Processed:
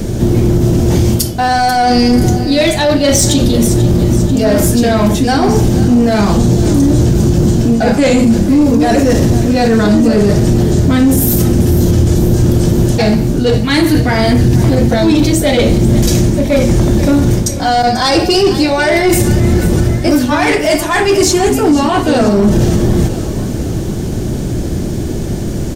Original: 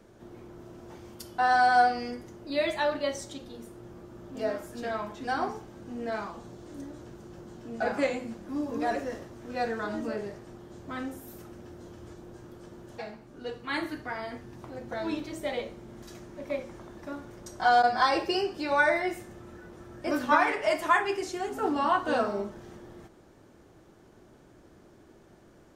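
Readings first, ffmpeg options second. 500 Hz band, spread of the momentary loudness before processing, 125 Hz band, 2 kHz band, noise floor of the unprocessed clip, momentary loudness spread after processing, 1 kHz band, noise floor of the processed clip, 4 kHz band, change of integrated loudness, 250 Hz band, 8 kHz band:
+19.0 dB, 23 LU, +38.0 dB, +12.0 dB, −56 dBFS, 4 LU, +11.0 dB, −17 dBFS, +21.0 dB, +18.0 dB, +26.5 dB, +30.0 dB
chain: -af "areverse,acompressor=threshold=-39dB:ratio=5,areverse,equalizer=frequency=1200:width_type=o:width=1.2:gain=-9,aecho=1:1:490|980|1470|1960|2450:0.178|0.0925|0.0481|0.025|0.013,asoftclip=type=tanh:threshold=-38dB,bass=frequency=250:gain=12,treble=frequency=4000:gain=7,alimiter=level_in=33.5dB:limit=-1dB:release=50:level=0:latency=1,volume=-1dB"

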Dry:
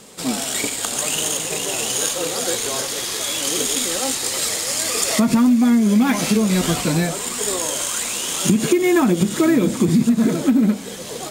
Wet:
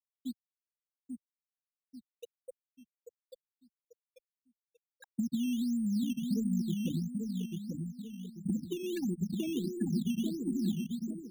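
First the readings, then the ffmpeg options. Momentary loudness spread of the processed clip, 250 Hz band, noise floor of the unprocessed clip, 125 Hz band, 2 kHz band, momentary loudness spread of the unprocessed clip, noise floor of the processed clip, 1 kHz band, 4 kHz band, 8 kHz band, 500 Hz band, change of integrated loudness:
16 LU, −15.5 dB, −30 dBFS, −14.0 dB, −30.0 dB, 6 LU, below −85 dBFS, below −40 dB, −27.0 dB, −33.5 dB, −22.0 dB, −16.0 dB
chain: -filter_complex "[0:a]afftfilt=real='re*gte(hypot(re,im),0.794)':imag='im*gte(hypot(re,im),0.794)':win_size=1024:overlap=0.75,acrossover=split=130|3400|7000[link_01][link_02][link_03][link_04];[link_01]acompressor=threshold=-44dB:ratio=4[link_05];[link_02]acompressor=threshold=-26dB:ratio=4[link_06];[link_03]acompressor=threshold=-49dB:ratio=4[link_07];[link_04]acompressor=threshold=-56dB:ratio=4[link_08];[link_05][link_06][link_07][link_08]amix=inputs=4:normalize=0,equalizer=frequency=130:width_type=o:width=0.56:gain=-12,asplit=2[link_09][link_10];[link_10]adelay=840,lowpass=frequency=1300:poles=1,volume=-4dB,asplit=2[link_11][link_12];[link_12]adelay=840,lowpass=frequency=1300:poles=1,volume=0.41,asplit=2[link_13][link_14];[link_14]adelay=840,lowpass=frequency=1300:poles=1,volume=0.41,asplit=2[link_15][link_16];[link_16]adelay=840,lowpass=frequency=1300:poles=1,volume=0.41,asplit=2[link_17][link_18];[link_18]adelay=840,lowpass=frequency=1300:poles=1,volume=0.41[link_19];[link_11][link_13][link_15][link_17][link_19]amix=inputs=5:normalize=0[link_20];[link_09][link_20]amix=inputs=2:normalize=0,asubboost=boost=4:cutoff=180,acrusher=samples=10:mix=1:aa=0.000001:lfo=1:lforange=10:lforate=1.5,volume=-8.5dB"

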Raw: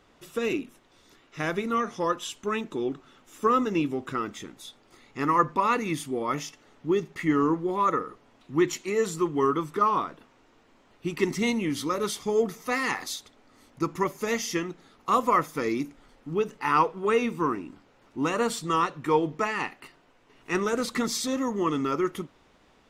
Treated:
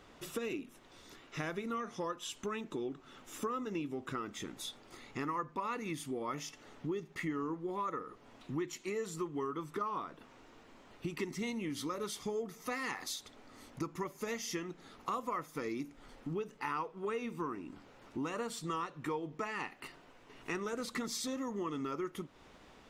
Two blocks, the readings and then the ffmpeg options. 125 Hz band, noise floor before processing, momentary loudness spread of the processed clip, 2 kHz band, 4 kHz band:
−9.5 dB, −61 dBFS, 13 LU, −11.0 dB, −8.5 dB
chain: -af "acompressor=threshold=-40dB:ratio=4,volume=2dB"

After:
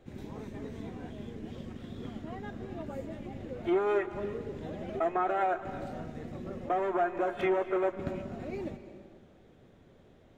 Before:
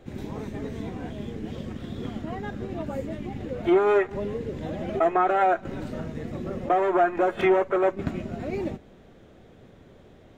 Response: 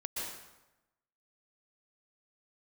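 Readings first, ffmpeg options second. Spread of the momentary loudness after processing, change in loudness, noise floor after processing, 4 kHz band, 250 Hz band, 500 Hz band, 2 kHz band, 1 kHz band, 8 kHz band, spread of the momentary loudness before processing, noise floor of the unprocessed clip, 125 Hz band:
14 LU, −7.5 dB, −59 dBFS, −7.5 dB, −7.5 dB, −7.5 dB, −7.5 dB, −7.5 dB, can't be measured, 14 LU, −52 dBFS, −8.0 dB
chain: -filter_complex "[0:a]asplit=2[link_01][link_02];[1:a]atrim=start_sample=2205,asetrate=26019,aresample=44100[link_03];[link_02][link_03]afir=irnorm=-1:irlink=0,volume=-16dB[link_04];[link_01][link_04]amix=inputs=2:normalize=0,volume=-9dB"

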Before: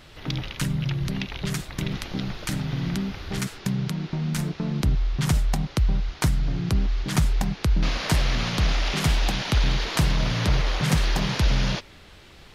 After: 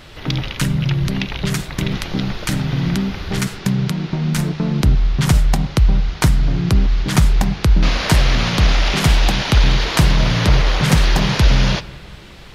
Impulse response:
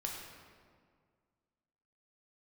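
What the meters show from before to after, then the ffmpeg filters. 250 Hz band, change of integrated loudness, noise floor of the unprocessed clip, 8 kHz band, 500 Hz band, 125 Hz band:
+8.0 dB, +8.0 dB, −48 dBFS, +7.0 dB, +8.5 dB, +8.0 dB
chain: -filter_complex "[0:a]asplit=2[link_01][link_02];[1:a]atrim=start_sample=2205,lowpass=5600[link_03];[link_02][link_03]afir=irnorm=-1:irlink=0,volume=-13.5dB[link_04];[link_01][link_04]amix=inputs=2:normalize=0,volume=7dB"

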